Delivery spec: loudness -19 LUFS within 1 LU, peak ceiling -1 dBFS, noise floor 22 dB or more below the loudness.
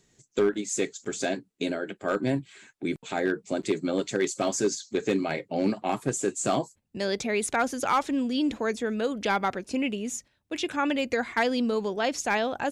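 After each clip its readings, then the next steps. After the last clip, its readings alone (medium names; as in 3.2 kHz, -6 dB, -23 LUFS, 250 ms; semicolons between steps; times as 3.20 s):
clipped samples 0.4%; clipping level -16.5 dBFS; loudness -28.5 LUFS; peak level -16.5 dBFS; loudness target -19.0 LUFS
-> clip repair -16.5 dBFS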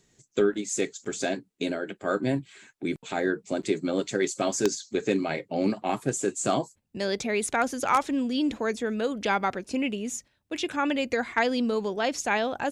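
clipped samples 0.0%; loudness -28.0 LUFS; peak level -7.5 dBFS; loudness target -19.0 LUFS
-> trim +9 dB; peak limiter -1 dBFS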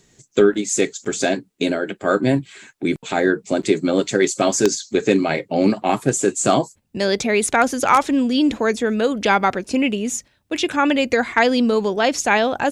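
loudness -19.0 LUFS; peak level -1.0 dBFS; noise floor -62 dBFS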